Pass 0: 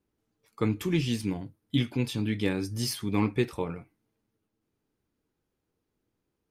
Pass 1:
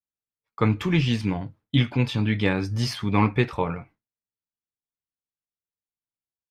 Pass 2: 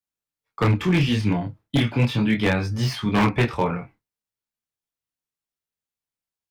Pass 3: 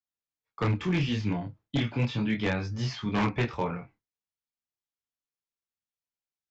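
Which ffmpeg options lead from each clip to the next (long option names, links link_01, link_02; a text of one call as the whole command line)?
ffmpeg -i in.wav -af "agate=range=-33dB:threshold=-51dB:ratio=3:detection=peak,firequalizer=gain_entry='entry(120,0);entry(340,-7);entry(590,1);entry(1000,3);entry(10000,-18)':delay=0.05:min_phase=1,volume=8dB" out.wav
ffmpeg -i in.wav -filter_complex "[0:a]acrossover=split=110|470|3000[link_01][link_02][link_03][link_04];[link_04]asoftclip=type=tanh:threshold=-35dB[link_05];[link_01][link_02][link_03][link_05]amix=inputs=4:normalize=0,flanger=delay=22.5:depth=6.1:speed=0.37,aeval=exprs='0.119*(abs(mod(val(0)/0.119+3,4)-2)-1)':channel_layout=same,volume=6.5dB" out.wav
ffmpeg -i in.wav -af "aresample=16000,aresample=44100,volume=-7.5dB" out.wav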